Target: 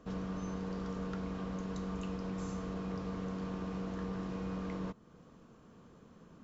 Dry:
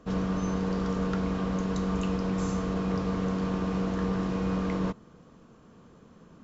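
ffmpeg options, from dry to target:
ffmpeg -i in.wav -af "acompressor=threshold=-43dB:ratio=1.5,volume=-4dB" out.wav

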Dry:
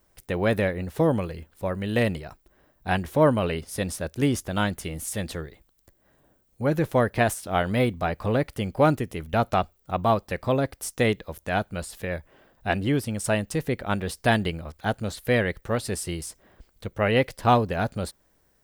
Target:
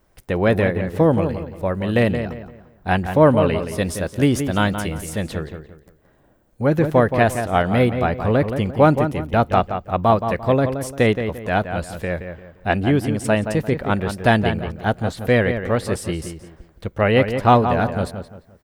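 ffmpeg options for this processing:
ffmpeg -i in.wav -filter_complex "[0:a]asetnsamples=nb_out_samples=441:pad=0,asendcmd='3.78 highshelf g -3;5.01 highshelf g -8.5',highshelf=frequency=3800:gain=-8.5,asplit=2[link_01][link_02];[link_02]adelay=173,lowpass=frequency=2700:poles=1,volume=-8dB,asplit=2[link_03][link_04];[link_04]adelay=173,lowpass=frequency=2700:poles=1,volume=0.33,asplit=2[link_05][link_06];[link_06]adelay=173,lowpass=frequency=2700:poles=1,volume=0.33,asplit=2[link_07][link_08];[link_08]adelay=173,lowpass=frequency=2700:poles=1,volume=0.33[link_09];[link_01][link_03][link_05][link_07][link_09]amix=inputs=5:normalize=0,volume=6dB" out.wav

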